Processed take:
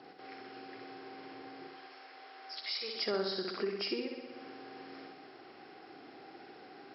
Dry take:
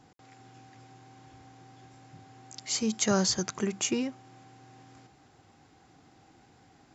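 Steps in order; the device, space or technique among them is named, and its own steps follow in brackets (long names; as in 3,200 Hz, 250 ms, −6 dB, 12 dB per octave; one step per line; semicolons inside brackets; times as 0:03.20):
0:01.67–0:02.96: high-pass filter 710 Hz 12 dB per octave
flutter between parallel walls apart 10.7 metres, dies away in 0.77 s
hearing aid with frequency lowering (hearing-aid frequency compression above 2,800 Hz 1.5 to 1; downward compressor 2.5 to 1, threshold −46 dBFS, peak gain reduction 17 dB; loudspeaker in its box 360–5,700 Hz, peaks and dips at 390 Hz +8 dB, 940 Hz −6 dB, 3,700 Hz −5 dB)
level +7.5 dB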